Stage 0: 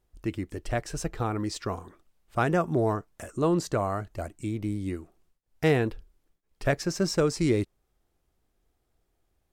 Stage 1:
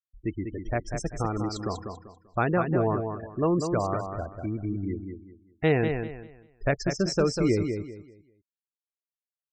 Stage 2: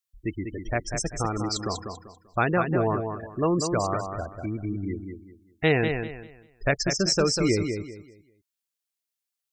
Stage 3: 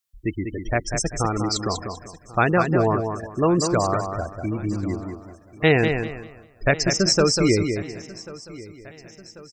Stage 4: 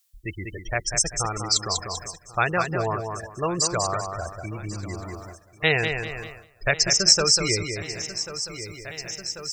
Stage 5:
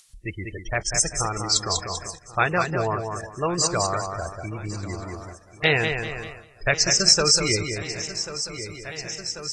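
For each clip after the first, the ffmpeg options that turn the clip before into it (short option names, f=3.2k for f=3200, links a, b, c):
-filter_complex "[0:a]afftfilt=real='re*gte(hypot(re,im),0.0224)':imag='im*gte(hypot(re,im),0.0224)':win_size=1024:overlap=0.75,asplit=2[a][b];[b]aecho=0:1:195|390|585|780:0.473|0.132|0.0371|0.0104[c];[a][c]amix=inputs=2:normalize=0"
-af "highshelf=f=2k:g=10.5"
-af "aecho=1:1:1090|2180|3270|4360:0.1|0.053|0.0281|0.0149,volume=4.5dB"
-af "equalizer=f=260:t=o:w=0.79:g=-12.5,areverse,acompressor=mode=upward:threshold=-24dB:ratio=2.5,areverse,highshelf=f=2.3k:g=11,volume=-4.5dB"
-af "acompressor=mode=upward:threshold=-41dB:ratio=2.5,volume=1dB" -ar 24000 -c:a aac -b:a 32k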